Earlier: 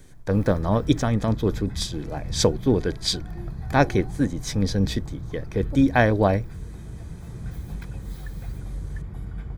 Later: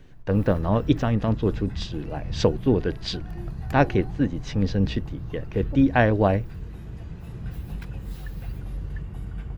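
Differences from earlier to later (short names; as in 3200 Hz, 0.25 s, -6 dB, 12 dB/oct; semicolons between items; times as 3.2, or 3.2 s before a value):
speech: add air absorption 190 m; master: remove Butterworth band-stop 2800 Hz, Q 6.2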